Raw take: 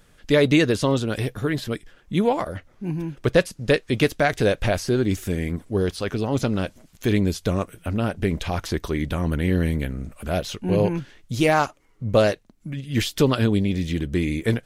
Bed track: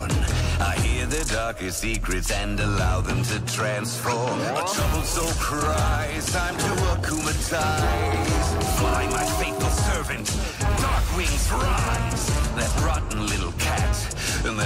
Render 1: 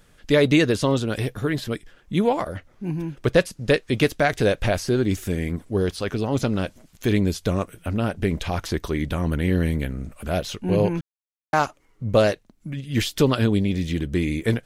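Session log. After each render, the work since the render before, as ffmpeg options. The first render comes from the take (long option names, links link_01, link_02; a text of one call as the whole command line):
ffmpeg -i in.wav -filter_complex "[0:a]asplit=3[link_01][link_02][link_03];[link_01]atrim=end=11.01,asetpts=PTS-STARTPTS,afade=type=out:start_time=11.006:duration=0.004:curve=hsin[link_04];[link_02]atrim=start=11.01:end=11.53,asetpts=PTS-STARTPTS,volume=0[link_05];[link_03]atrim=start=11.53,asetpts=PTS-STARTPTS,afade=type=in:duration=0.004:curve=hsin[link_06];[link_04][link_05][link_06]concat=n=3:v=0:a=1" out.wav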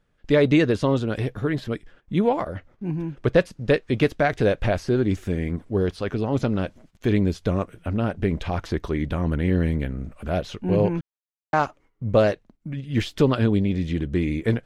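ffmpeg -i in.wav -af "aemphasis=mode=reproduction:type=75kf,agate=range=-12dB:threshold=-50dB:ratio=16:detection=peak" out.wav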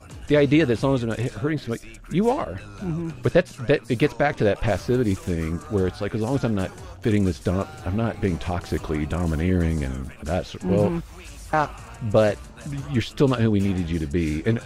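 ffmpeg -i in.wav -i bed.wav -filter_complex "[1:a]volume=-17.5dB[link_01];[0:a][link_01]amix=inputs=2:normalize=0" out.wav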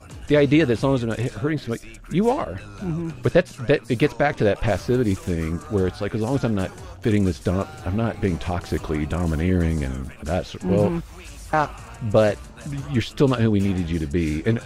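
ffmpeg -i in.wav -af "volume=1dB" out.wav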